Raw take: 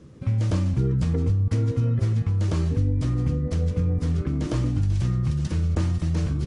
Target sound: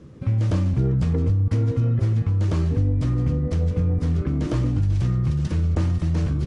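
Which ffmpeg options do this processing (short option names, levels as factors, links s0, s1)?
-filter_complex "[0:a]highshelf=f=4600:g=-7,asplit=2[s0][s1];[s1]asoftclip=type=hard:threshold=0.0631,volume=0.398[s2];[s0][s2]amix=inputs=2:normalize=0"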